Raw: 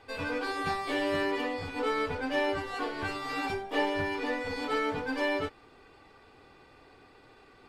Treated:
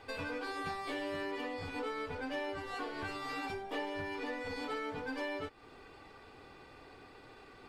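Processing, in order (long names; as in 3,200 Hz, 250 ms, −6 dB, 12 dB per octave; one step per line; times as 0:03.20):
downward compressor 3 to 1, threshold −41 dBFS, peak gain reduction 12.5 dB
level +1.5 dB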